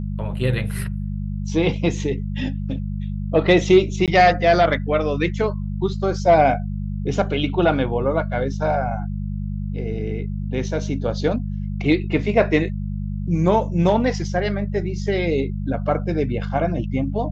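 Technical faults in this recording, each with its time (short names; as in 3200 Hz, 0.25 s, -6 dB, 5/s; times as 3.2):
hum 50 Hz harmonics 4 -26 dBFS
4.06–4.08 gap 17 ms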